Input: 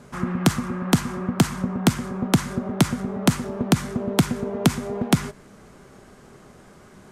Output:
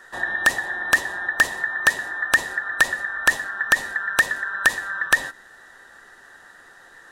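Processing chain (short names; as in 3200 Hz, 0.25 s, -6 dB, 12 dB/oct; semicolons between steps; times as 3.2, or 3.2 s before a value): band inversion scrambler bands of 2000 Hz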